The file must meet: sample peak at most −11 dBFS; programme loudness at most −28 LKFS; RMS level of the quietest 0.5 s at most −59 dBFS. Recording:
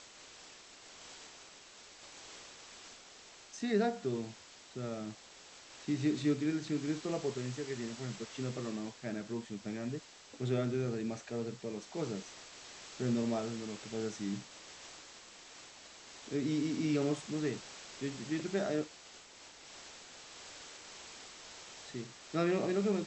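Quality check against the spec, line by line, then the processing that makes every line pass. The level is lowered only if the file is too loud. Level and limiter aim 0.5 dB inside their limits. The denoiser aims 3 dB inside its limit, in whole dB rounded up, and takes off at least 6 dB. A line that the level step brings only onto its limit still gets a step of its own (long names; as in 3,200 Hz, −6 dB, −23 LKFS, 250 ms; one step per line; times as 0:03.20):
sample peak −20.0 dBFS: in spec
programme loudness −37.5 LKFS: in spec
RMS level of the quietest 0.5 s −56 dBFS: out of spec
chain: broadband denoise 6 dB, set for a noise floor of −56 dBFS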